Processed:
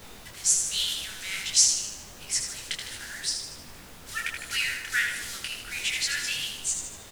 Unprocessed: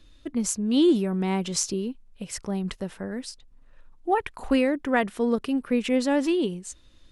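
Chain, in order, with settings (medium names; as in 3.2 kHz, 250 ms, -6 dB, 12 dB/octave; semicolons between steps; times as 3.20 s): block-companded coder 5-bit; low-pass 7.9 kHz 12 dB/octave; tilt EQ +4 dB/octave; in parallel at -0.5 dB: gain riding within 4 dB 0.5 s; on the sum: Chebyshev high-pass 1.4 kHz, order 6; on a send: feedback delay 78 ms, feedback 53%, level -6 dB; on the sum: added noise pink -41 dBFS; detune thickener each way 46 cents; trim -2 dB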